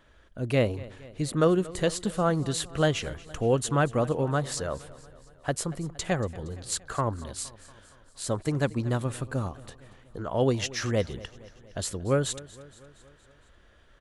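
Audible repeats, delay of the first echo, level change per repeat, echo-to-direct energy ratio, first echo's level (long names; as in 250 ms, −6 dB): 4, 233 ms, −4.5 dB, −17.5 dB, −19.5 dB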